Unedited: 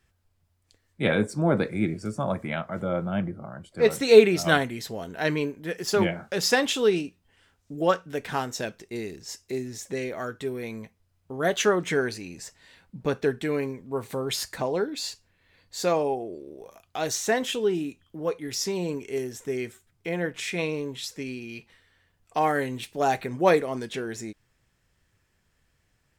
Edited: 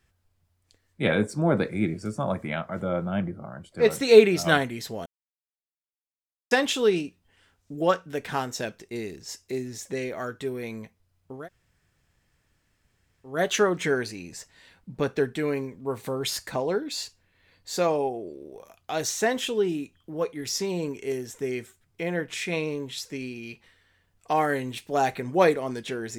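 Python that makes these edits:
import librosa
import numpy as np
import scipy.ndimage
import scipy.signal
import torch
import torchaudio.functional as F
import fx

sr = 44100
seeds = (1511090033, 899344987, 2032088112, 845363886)

y = fx.edit(x, sr, fx.silence(start_s=5.06, length_s=1.45),
    fx.insert_room_tone(at_s=11.37, length_s=1.94, crossfade_s=0.24), tone=tone)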